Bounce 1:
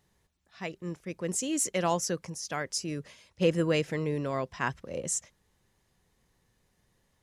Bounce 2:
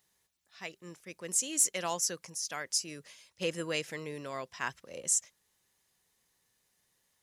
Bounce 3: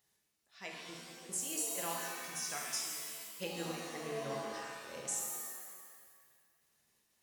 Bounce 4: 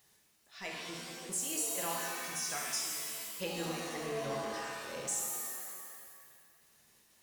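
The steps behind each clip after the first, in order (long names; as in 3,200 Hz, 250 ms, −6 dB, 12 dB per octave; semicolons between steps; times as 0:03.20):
spectral tilt +3 dB per octave; level −5.5 dB
downward compressor, threshold −32 dBFS, peak gain reduction 10.5 dB; gate pattern "xx...xxxxx." 186 BPM −12 dB; reverb with rising layers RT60 1.6 s, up +7 semitones, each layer −2 dB, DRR −1 dB; level −5 dB
mu-law and A-law mismatch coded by mu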